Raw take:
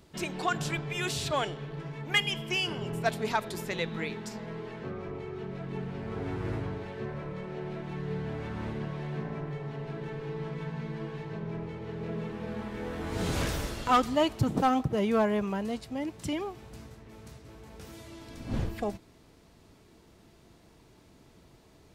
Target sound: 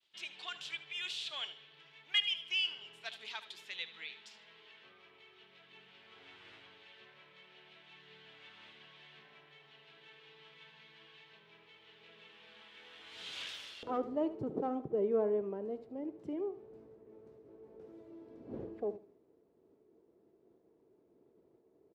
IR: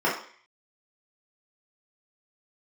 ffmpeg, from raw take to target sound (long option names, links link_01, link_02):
-af "agate=range=-33dB:threshold=-54dB:ratio=3:detection=peak,asetnsamples=nb_out_samples=441:pad=0,asendcmd='13.83 bandpass f 410',bandpass=frequency=3200:width_type=q:width=3.1:csg=0,aecho=1:1:75|150|225:0.188|0.0452|0.0108"